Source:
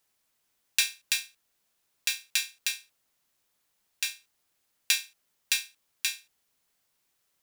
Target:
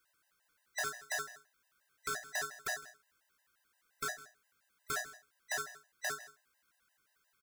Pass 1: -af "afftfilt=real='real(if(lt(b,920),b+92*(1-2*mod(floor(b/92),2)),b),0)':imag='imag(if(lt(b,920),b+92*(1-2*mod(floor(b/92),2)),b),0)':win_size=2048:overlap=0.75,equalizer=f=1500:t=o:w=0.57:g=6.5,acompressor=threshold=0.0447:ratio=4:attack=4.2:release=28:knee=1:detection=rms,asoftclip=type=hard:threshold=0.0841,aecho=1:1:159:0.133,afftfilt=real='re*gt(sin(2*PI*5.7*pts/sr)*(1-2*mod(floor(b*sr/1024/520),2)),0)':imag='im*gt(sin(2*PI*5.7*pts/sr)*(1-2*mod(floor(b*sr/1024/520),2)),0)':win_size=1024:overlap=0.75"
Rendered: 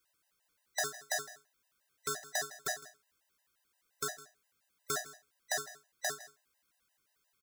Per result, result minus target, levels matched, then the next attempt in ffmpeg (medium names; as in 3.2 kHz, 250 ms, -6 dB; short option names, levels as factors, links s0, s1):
hard clipper: distortion -8 dB; 2 kHz band -3.5 dB
-af "afftfilt=real='real(if(lt(b,920),b+92*(1-2*mod(floor(b/92),2)),b),0)':imag='imag(if(lt(b,920),b+92*(1-2*mod(floor(b/92),2)),b),0)':win_size=2048:overlap=0.75,equalizer=f=1500:t=o:w=0.57:g=6.5,acompressor=threshold=0.0447:ratio=4:attack=4.2:release=28:knee=1:detection=rms,asoftclip=type=hard:threshold=0.0335,aecho=1:1:159:0.133,afftfilt=real='re*gt(sin(2*PI*5.7*pts/sr)*(1-2*mod(floor(b*sr/1024/520),2)),0)':imag='im*gt(sin(2*PI*5.7*pts/sr)*(1-2*mod(floor(b*sr/1024/520),2)),0)':win_size=1024:overlap=0.75"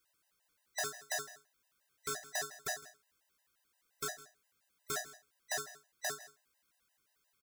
2 kHz band -3.0 dB
-af "afftfilt=real='real(if(lt(b,920),b+92*(1-2*mod(floor(b/92),2)),b),0)':imag='imag(if(lt(b,920),b+92*(1-2*mod(floor(b/92),2)),b),0)':win_size=2048:overlap=0.75,equalizer=f=1500:t=o:w=0.57:g=15.5,acompressor=threshold=0.0447:ratio=4:attack=4.2:release=28:knee=1:detection=rms,asoftclip=type=hard:threshold=0.0335,aecho=1:1:159:0.133,afftfilt=real='re*gt(sin(2*PI*5.7*pts/sr)*(1-2*mod(floor(b*sr/1024/520),2)),0)':imag='im*gt(sin(2*PI*5.7*pts/sr)*(1-2*mod(floor(b*sr/1024/520),2)),0)':win_size=1024:overlap=0.75"